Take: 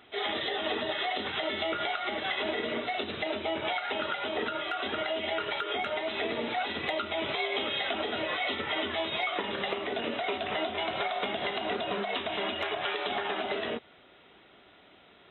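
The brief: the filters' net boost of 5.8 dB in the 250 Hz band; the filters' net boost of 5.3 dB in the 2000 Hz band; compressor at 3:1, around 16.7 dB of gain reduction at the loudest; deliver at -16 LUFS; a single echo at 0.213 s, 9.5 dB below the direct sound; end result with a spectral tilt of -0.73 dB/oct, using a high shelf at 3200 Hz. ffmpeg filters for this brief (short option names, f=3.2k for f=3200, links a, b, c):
-af "equalizer=f=250:t=o:g=7.5,equalizer=f=2k:t=o:g=7.5,highshelf=f=3.2k:g=-4,acompressor=threshold=-48dB:ratio=3,aecho=1:1:213:0.335,volume=27.5dB"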